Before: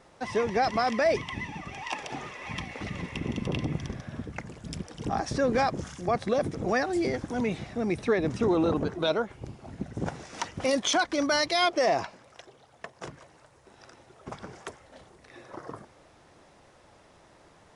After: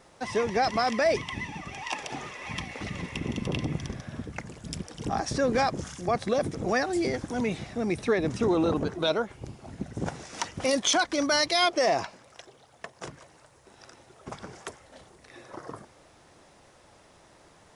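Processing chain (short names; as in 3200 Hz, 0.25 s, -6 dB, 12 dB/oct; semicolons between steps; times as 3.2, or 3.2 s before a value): high shelf 4900 Hz +6.5 dB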